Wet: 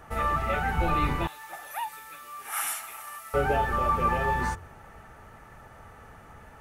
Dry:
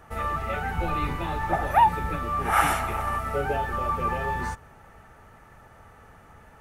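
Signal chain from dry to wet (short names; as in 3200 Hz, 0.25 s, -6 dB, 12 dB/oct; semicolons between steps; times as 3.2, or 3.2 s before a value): de-hum 88.16 Hz, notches 6; 1.27–3.34 differentiator; gain +2 dB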